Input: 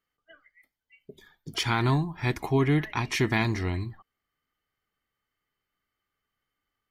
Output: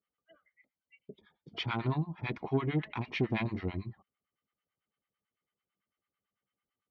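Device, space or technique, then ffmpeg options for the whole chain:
guitar amplifier with harmonic tremolo: -filter_complex "[0:a]acrossover=split=800[a][b];[a]aeval=exprs='val(0)*(1-1/2+1/2*cos(2*PI*9*n/s))':c=same[c];[b]aeval=exprs='val(0)*(1-1/2-1/2*cos(2*PI*9*n/s))':c=same[d];[c][d]amix=inputs=2:normalize=0,asoftclip=type=tanh:threshold=-20dB,highpass=83,equalizer=f=200:t=q:w=4:g=6,equalizer=f=530:t=q:w=4:g=5,equalizer=f=1.7k:t=q:w=4:g=-6,lowpass=f=3.5k:w=0.5412,lowpass=f=3.5k:w=1.3066,volume=-2dB"

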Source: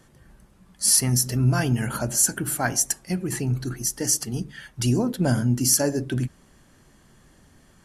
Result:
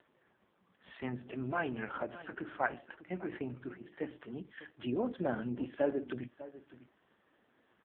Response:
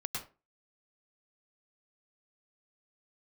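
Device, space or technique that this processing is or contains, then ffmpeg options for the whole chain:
satellite phone: -filter_complex "[0:a]asplit=3[a][b][c];[a]afade=t=out:st=1.16:d=0.02[d];[b]bandreject=f=60:t=h:w=6,bandreject=f=120:t=h:w=6,bandreject=f=180:t=h:w=6,bandreject=f=240:t=h:w=6,afade=t=in:st=1.16:d=0.02,afade=t=out:st=2.83:d=0.02[e];[c]afade=t=in:st=2.83:d=0.02[f];[d][e][f]amix=inputs=3:normalize=0,highpass=340,lowpass=3.1k,aecho=1:1:599:0.158,volume=-5dB" -ar 8000 -c:a libopencore_amrnb -b:a 4750

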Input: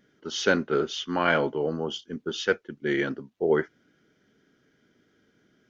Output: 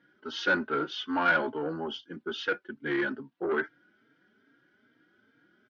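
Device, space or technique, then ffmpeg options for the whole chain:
barber-pole flanger into a guitar amplifier: -filter_complex "[0:a]asplit=2[a][b];[b]adelay=3.8,afreqshift=2.4[c];[a][c]amix=inputs=2:normalize=1,asoftclip=type=tanh:threshold=-23dB,highpass=110,equalizer=f=170:t=q:w=4:g=-5,equalizer=f=300:t=q:w=4:g=4,equalizer=f=450:t=q:w=4:g=-4,equalizer=f=910:t=q:w=4:g=5,equalizer=f=1.5k:t=q:w=4:g=9,lowpass=f=4.5k:w=0.5412,lowpass=f=4.5k:w=1.3066"

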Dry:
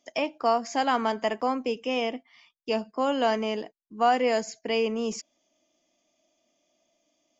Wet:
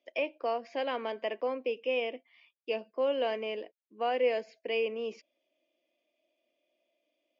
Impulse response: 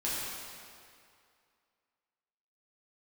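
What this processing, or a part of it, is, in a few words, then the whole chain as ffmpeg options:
phone earpiece: -af "highpass=330,equalizer=f=360:t=q:w=4:g=5,equalizer=f=530:t=q:w=4:g=9,equalizer=f=820:t=q:w=4:g=-7,equalizer=f=1.3k:t=q:w=4:g=-8,equalizer=f=2.5k:t=q:w=4:g=7,lowpass=f=3.9k:w=0.5412,lowpass=f=3.9k:w=1.3066,volume=-7.5dB"

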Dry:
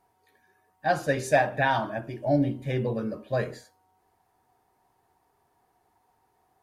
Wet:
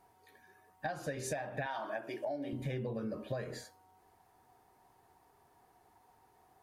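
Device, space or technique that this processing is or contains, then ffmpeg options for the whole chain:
serial compression, peaks first: -filter_complex "[0:a]asettb=1/sr,asplit=3[a][b][c];[a]atrim=end=1.664[d];[b]atrim=start=1.66:end=2.53,asetpts=PTS-STARTPTS,afade=t=in:d=0.004:c=qsin,afade=t=out:st=0.866:d=0.004:c=qsin,highpass=410[e];[c]atrim=start=2.526[f];[d][e]acrossfade=d=0.004:c1=hsin:c2=qsin[g];[g][f]acrossfade=d=0.004:c1=qsin:c2=hsin,acompressor=threshold=-32dB:ratio=10,acompressor=threshold=-39dB:ratio=2.5,volume=2.5dB"

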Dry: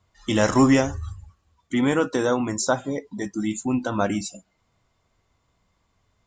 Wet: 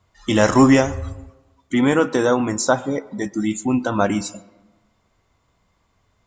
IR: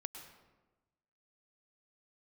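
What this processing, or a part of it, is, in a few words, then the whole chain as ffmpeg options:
filtered reverb send: -filter_complex "[0:a]asplit=2[a][b];[b]highpass=f=240:p=1,lowpass=3.2k[c];[1:a]atrim=start_sample=2205[d];[c][d]afir=irnorm=-1:irlink=0,volume=-9dB[e];[a][e]amix=inputs=2:normalize=0,volume=3dB"

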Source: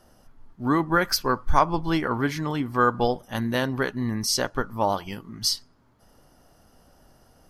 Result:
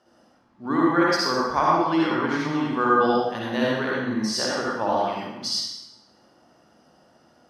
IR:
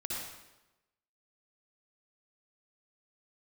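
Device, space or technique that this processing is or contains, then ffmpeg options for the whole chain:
supermarket ceiling speaker: -filter_complex "[0:a]highpass=210,lowpass=5.6k[a];[1:a]atrim=start_sample=2205[b];[a][b]afir=irnorm=-1:irlink=0"

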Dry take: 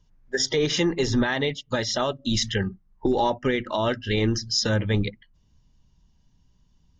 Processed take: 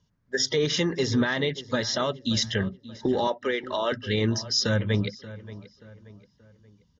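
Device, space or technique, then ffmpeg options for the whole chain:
car door speaker: -filter_complex "[0:a]asettb=1/sr,asplit=3[a][b][c];[a]atrim=end=3.274[d];[b]atrim=start=3.27:end=3.92,asetpts=PTS-STARTPTS,afade=t=in:d=0.004:c=qsin,afade=t=out:st=0.646:d=0.004:c=qsin,highpass=f=320:w=0.5412,highpass=f=320:w=1.3066[e];[c]atrim=start=3.916[f];[d][e]acrossfade=d=0.004:c1=hsin:c2=qsin[g];[g][f]acrossfade=d=0.004:c1=qsin:c2=hsin,highpass=88,equalizer=f=330:t=q:w=4:g=-5,equalizer=f=790:t=q:w=4:g=-7,equalizer=f=2.5k:t=q:w=4:g=-5,lowpass=f=6.8k:w=0.5412,lowpass=f=6.8k:w=1.3066,asplit=2[h][i];[i]adelay=580,lowpass=f=2.7k:p=1,volume=-16.5dB,asplit=2[j][k];[k]adelay=580,lowpass=f=2.7k:p=1,volume=0.42,asplit=2[l][m];[m]adelay=580,lowpass=f=2.7k:p=1,volume=0.42,asplit=2[n][o];[o]adelay=580,lowpass=f=2.7k:p=1,volume=0.42[p];[h][j][l][n][p]amix=inputs=5:normalize=0"

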